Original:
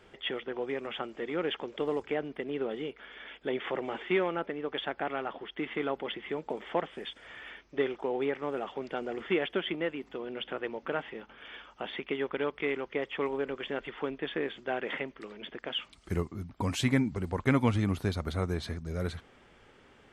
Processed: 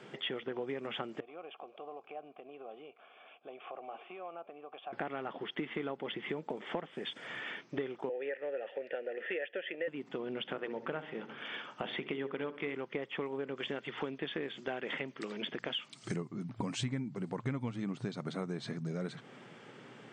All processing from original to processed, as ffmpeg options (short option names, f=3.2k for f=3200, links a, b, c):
-filter_complex "[0:a]asettb=1/sr,asplit=3[a][b][c];[a]atrim=end=1.204[d];[b]atrim=start=1.2:end=4.93,asetpts=PTS-STARTPTS,afade=t=in:d=0.004:c=qsin,afade=t=out:st=3.726:d=0.004:c=qsin,acompressor=threshold=-37dB:ratio=2.5:attack=3.2:release=140:knee=1:detection=peak,asplit=3[e][f][g];[e]bandpass=f=730:t=q:w=8,volume=0dB[h];[f]bandpass=f=1.09k:t=q:w=8,volume=-6dB[i];[g]bandpass=f=2.44k:t=q:w=8,volume=-9dB[j];[h][i][j]amix=inputs=3:normalize=0[k];[c]atrim=start=4.926[l];[d][k]acrossfade=d=0.004:c1=hsin:c2=qsin[m];[m][l]acrossfade=d=0.004:c1=qsin:c2=hsin,asettb=1/sr,asplit=3[n][o][p];[n]atrim=end=8.094[q];[o]atrim=start=8.09:end=9.88,asetpts=PTS-STARTPTS,afade=t=in:d=0.004:c=qsin,afade=t=out:st=1.786:d=0.004:c=qsin,asplit=3[r][s][t];[r]bandpass=f=530:t=q:w=8,volume=0dB[u];[s]bandpass=f=1.84k:t=q:w=8,volume=-6dB[v];[t]bandpass=f=2.48k:t=q:w=8,volume=-9dB[w];[u][v][w]amix=inputs=3:normalize=0,equalizer=f=1.4k:w=0.45:g=12.5[x];[p]atrim=start=9.876[y];[q][x]acrossfade=d=0.004:c1=hsin:c2=qsin[z];[z][y]acrossfade=d=0.004:c1=qsin:c2=hsin,asettb=1/sr,asplit=3[aa][ab][ac];[aa]atrim=end=10.424[ad];[ab]atrim=start=10.42:end=12.75,asetpts=PTS-STARTPTS,afade=t=in:d=0.004:c=qsin,afade=t=out:st=2.326:d=0.004:c=qsin,bandreject=f=60:t=h:w=6,bandreject=f=120:t=h:w=6,bandreject=f=180:t=h:w=6,bandreject=f=240:t=h:w=6,bandreject=f=300:t=h:w=6,bandreject=f=360:t=h:w=6,bandreject=f=420:t=h:w=6,bandreject=f=480:t=h:w=6,asplit=2[ae][af];[af]adelay=66,lowpass=f=3.4k:p=1,volume=-16dB,asplit=2[ag][ah];[ah]adelay=66,lowpass=f=3.4k:p=1,volume=0.5,asplit=2[ai][aj];[aj]adelay=66,lowpass=f=3.4k:p=1,volume=0.5,asplit=2[ak][al];[al]adelay=66,lowpass=f=3.4k:p=1,volume=0.5[am];[ae][ag][ai][ak][am]amix=inputs=5:normalize=0,atrim=end_sample=102753[an];[ac]atrim=start=12.746[ao];[ad][an]acrossfade=d=0.004:c1=hsin:c2=qsin[ap];[ap][ao]acrossfade=d=0.004:c1=qsin:c2=hsin,asettb=1/sr,asplit=3[aq][ar][as];[aq]atrim=end=13.574[at];[ar]atrim=start=13.57:end=16.16,asetpts=PTS-STARTPTS,afade=t=in:d=0.004:c=qsin,afade=t=out:st=2.586:d=0.004:c=qsin,equalizer=f=6.7k:w=0.54:g=8,bandreject=f=60:t=h:w=6,bandreject=f=120:t=h:w=6,bandreject=f=180:t=h:w=6[au];[as]atrim=start=16.156[av];[at][au]acrossfade=d=0.004:c1=hsin:c2=qsin[aw];[aw][av]acrossfade=d=0.004:c1=qsin:c2=hsin,lowshelf=f=190:g=9,afftfilt=real='re*between(b*sr/4096,110,9200)':imag='im*between(b*sr/4096,110,9200)':win_size=4096:overlap=0.75,acompressor=threshold=-40dB:ratio=5,volume=4.5dB"